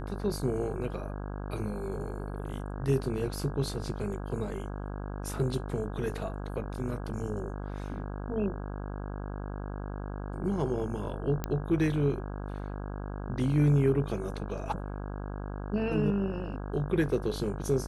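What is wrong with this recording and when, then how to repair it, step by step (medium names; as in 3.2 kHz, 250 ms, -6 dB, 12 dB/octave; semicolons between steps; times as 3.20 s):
buzz 50 Hz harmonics 33 -37 dBFS
11.44 s: pop -17 dBFS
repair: de-click; de-hum 50 Hz, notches 33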